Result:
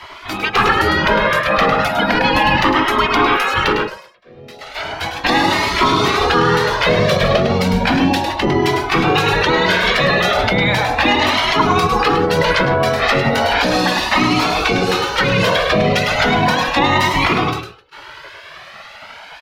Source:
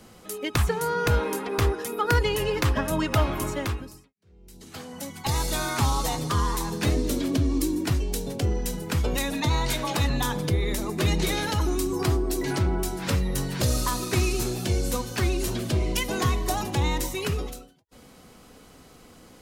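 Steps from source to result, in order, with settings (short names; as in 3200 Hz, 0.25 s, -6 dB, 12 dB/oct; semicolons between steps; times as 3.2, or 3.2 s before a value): spectral gate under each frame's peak -15 dB weak; low shelf 100 Hz -6.5 dB; soft clip -21.5 dBFS, distortion -21 dB; air absorption 330 m; on a send: echo 0.104 s -7.5 dB; on the sum: maximiser +32 dB; cascading flanger rising 0.35 Hz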